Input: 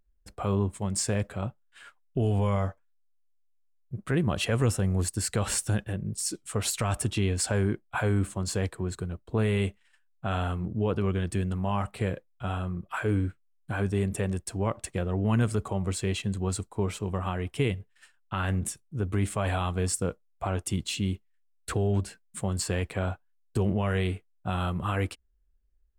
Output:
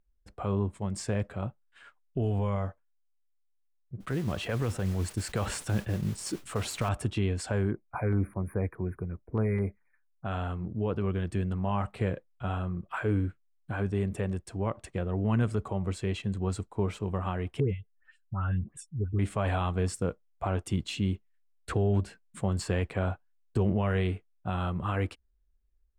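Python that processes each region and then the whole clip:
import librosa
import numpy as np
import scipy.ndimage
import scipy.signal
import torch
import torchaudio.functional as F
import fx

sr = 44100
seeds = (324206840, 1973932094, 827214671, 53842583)

y = fx.chain(x, sr, fx.harmonic_tremolo(hz=6.8, depth_pct=50, crossover_hz=540.0),
    fx.mod_noise(seeds[0], snr_db=15),
    fx.env_flatten(amount_pct=50), at=(4.0, 6.89))
y = fx.chain(y, sr, fx.brickwall_bandstop(low_hz=2500.0, high_hz=9200.0),
    fx.filter_lfo_notch(shape='saw_down', hz=4.8, low_hz=520.0, high_hz=2900.0, q=1.3), at=(7.71, 10.25))
y = fx.chain(y, sr, fx.spec_expand(power=1.7),
    fx.dispersion(late='highs', ms=112.0, hz=1700.0), at=(17.6, 19.19))
y = fx.lowpass(y, sr, hz=2600.0, slope=6)
y = fx.rider(y, sr, range_db=10, speed_s=2.0)
y = F.gain(torch.from_numpy(y), -1.5).numpy()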